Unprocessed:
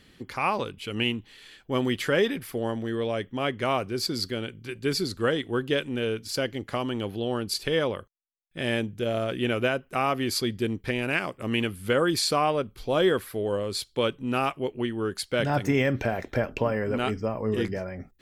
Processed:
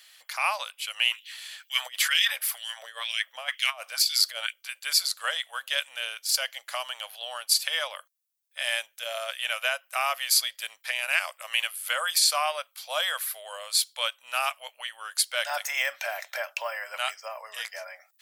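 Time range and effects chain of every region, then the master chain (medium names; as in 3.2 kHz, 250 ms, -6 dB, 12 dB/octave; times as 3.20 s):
1.11–4.53 s: LFO high-pass sine 2.1 Hz 310–3100 Hz + compressor with a negative ratio -28 dBFS, ratio -0.5
whole clip: elliptic high-pass 600 Hz, stop band 40 dB; tilt EQ +4.5 dB/octave; loudness maximiser +7 dB; trim -8.5 dB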